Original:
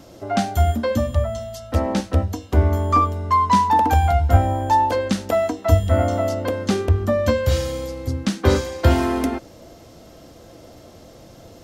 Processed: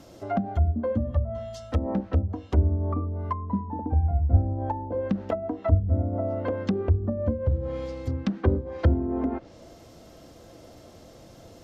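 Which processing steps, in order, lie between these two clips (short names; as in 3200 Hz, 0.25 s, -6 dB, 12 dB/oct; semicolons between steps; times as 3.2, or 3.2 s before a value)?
treble ducked by the level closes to 340 Hz, closed at -15 dBFS; gain -4.5 dB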